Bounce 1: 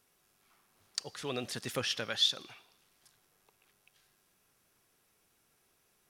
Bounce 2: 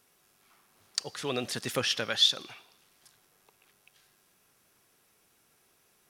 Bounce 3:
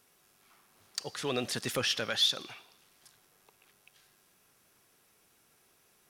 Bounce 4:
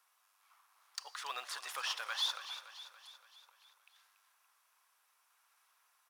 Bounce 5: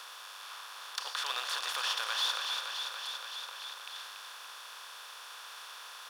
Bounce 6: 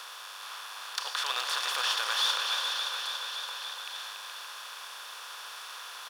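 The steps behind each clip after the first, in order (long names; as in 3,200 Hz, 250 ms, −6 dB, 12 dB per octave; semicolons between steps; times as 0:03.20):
low-shelf EQ 67 Hz −7.5 dB; level +5 dB
in parallel at −2.5 dB: brickwall limiter −20 dBFS, peak gain reduction 11 dB; on the sum: soft clipping −13.5 dBFS, distortion −18 dB; level −4.5 dB
in parallel at −11.5 dB: sample-and-hold swept by an LFO 12×, swing 160% 0.67 Hz; on the sum: four-pole ladder high-pass 880 Hz, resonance 50%; repeating echo 285 ms, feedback 55%, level −12 dB; level +1 dB
compressor on every frequency bin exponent 0.4
single-tap delay 422 ms −6.5 dB; level +3.5 dB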